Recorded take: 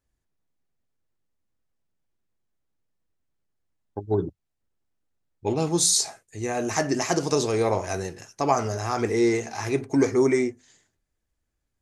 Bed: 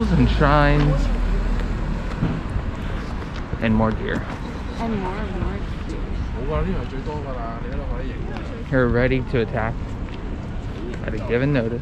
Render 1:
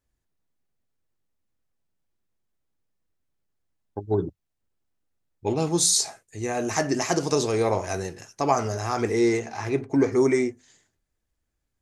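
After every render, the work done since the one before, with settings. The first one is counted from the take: 9.38–10.11 s: low-pass 3.9 kHz -> 2.1 kHz 6 dB/octave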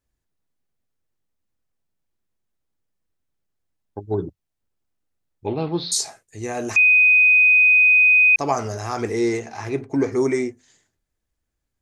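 5.46–5.92 s: steep low-pass 4.4 kHz 72 dB/octave; 6.76–8.36 s: bleep 2.5 kHz -10.5 dBFS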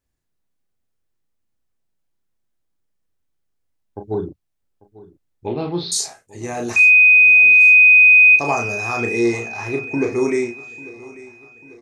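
doubling 34 ms -5 dB; feedback delay 844 ms, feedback 51%, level -20 dB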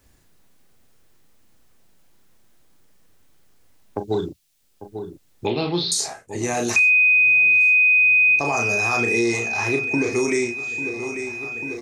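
peak limiter -12 dBFS, peak gain reduction 6.5 dB; three bands compressed up and down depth 70%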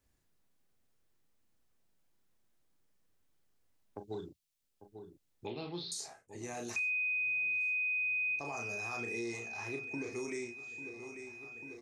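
trim -18.5 dB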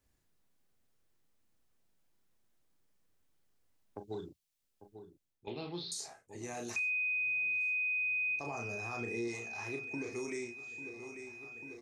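4.87–5.47 s: fade out, to -15 dB; 8.46–9.28 s: tilt EQ -1.5 dB/octave

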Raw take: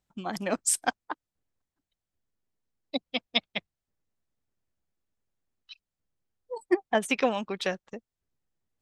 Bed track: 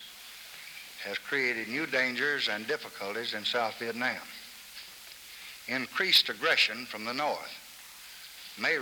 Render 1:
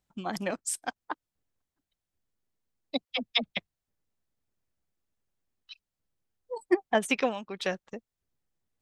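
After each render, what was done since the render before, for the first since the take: 0.51–0.96 s: gain -7 dB; 3.05–3.57 s: phase dispersion lows, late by 54 ms, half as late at 500 Hz; 7.14–7.73 s: dip -8.5 dB, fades 0.29 s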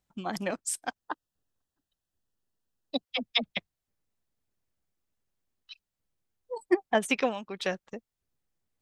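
0.98–3.03 s: Butterworth band-stop 2.2 kHz, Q 4.3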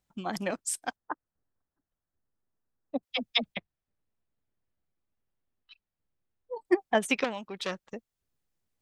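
0.96–3.03 s: low-pass 1.8 kHz 24 dB/octave; 3.54–6.65 s: distance through air 320 m; 7.24–7.86 s: transformer saturation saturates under 2.1 kHz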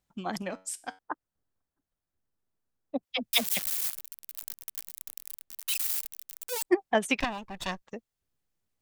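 0.42–0.99 s: feedback comb 94 Hz, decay 0.35 s, mix 50%; 3.33–6.64 s: zero-crossing glitches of -19 dBFS; 7.20–7.82 s: comb filter that takes the minimum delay 1.1 ms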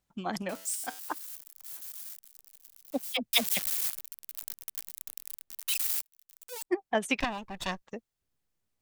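0.49–3.17 s: zero-crossing glitches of -33.5 dBFS; 6.02–7.35 s: fade in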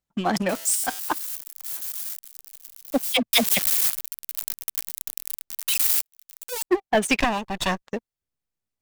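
waveshaping leveller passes 3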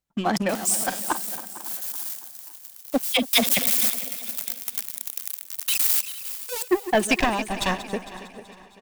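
backward echo that repeats 227 ms, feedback 55%, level -13 dB; feedback delay 278 ms, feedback 59%, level -17.5 dB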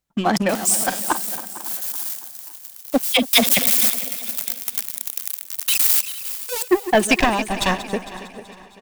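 trim +4.5 dB

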